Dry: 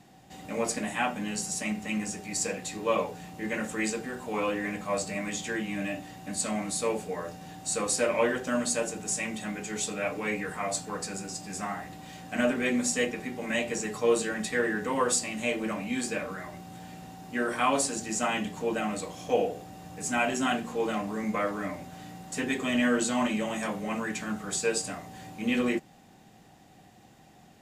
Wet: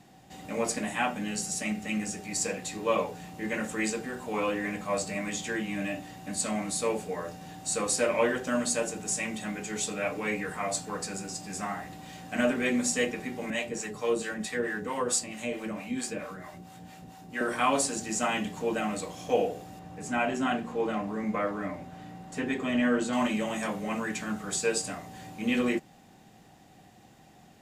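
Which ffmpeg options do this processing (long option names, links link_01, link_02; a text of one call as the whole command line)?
ffmpeg -i in.wav -filter_complex "[0:a]asettb=1/sr,asplit=3[link_01][link_02][link_03];[link_01]atrim=end=1.184[link_04];[link_02]atrim=start=1.18:end=2.2,asetpts=PTS-STARTPTS,afade=type=in:duration=0.004:curve=qsin,afade=type=out:start_time=1.016:duration=0.004:curve=qsin,bandreject=frequency=1000:width=6.1[link_05];[link_03]atrim=start=2.196[link_06];[link_04][link_05]acrossfade=duration=0.004:curve1=hsin:curve2=qsin[link_07];[link_07][link_06]acrossfade=duration=0.004:curve1=qsin:curve2=hsin,asettb=1/sr,asplit=3[link_08][link_09][link_10];[link_08]atrim=end=13.504[link_11];[link_09]atrim=start=13.5:end=17.41,asetpts=PTS-STARTPTS,afade=type=in:duration=0.004:curve=qsin,afade=type=out:start_time=3.906:duration=0.004:curve=qsin,acrossover=split=560[link_12][link_13];[link_12]aeval=exprs='val(0)*(1-0.7/2+0.7/2*cos(2*PI*4.5*n/s))':channel_layout=same[link_14];[link_13]aeval=exprs='val(0)*(1-0.7/2-0.7/2*cos(2*PI*4.5*n/s))':channel_layout=same[link_15];[link_14][link_15]amix=inputs=2:normalize=0[link_16];[link_10]atrim=start=17.406[link_17];[link_11][link_16]acrossfade=duration=0.004:curve1=hsin:curve2=qsin[link_18];[link_18][link_17]acrossfade=duration=0.004:curve1=qsin:curve2=hsin,asettb=1/sr,asplit=3[link_19][link_20][link_21];[link_19]atrim=end=19.794[link_22];[link_20]atrim=start=19.79:end=23.13,asetpts=PTS-STARTPTS,afade=type=in:duration=0.004:curve=qsin,afade=type=out:start_time=3.336:duration=0.004:curve=qsin,highshelf=frequency=3700:gain=-11.5[link_23];[link_21]atrim=start=23.126[link_24];[link_22][link_23]acrossfade=duration=0.004:curve1=hsin:curve2=qsin[link_25];[link_25][link_24]acrossfade=duration=0.004:curve1=qsin:curve2=hsin" out.wav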